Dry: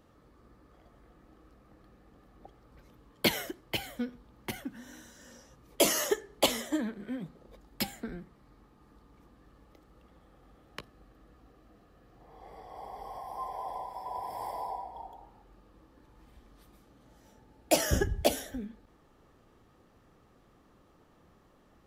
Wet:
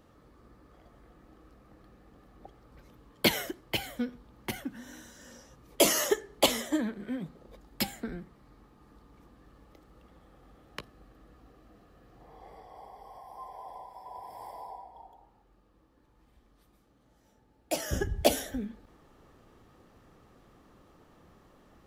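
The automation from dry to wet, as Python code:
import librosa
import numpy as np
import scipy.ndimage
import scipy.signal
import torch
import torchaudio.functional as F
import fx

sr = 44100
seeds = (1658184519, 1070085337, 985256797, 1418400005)

y = fx.gain(x, sr, db=fx.line((12.27, 2.0), (12.99, -6.5), (17.82, -6.5), (18.31, 3.5)))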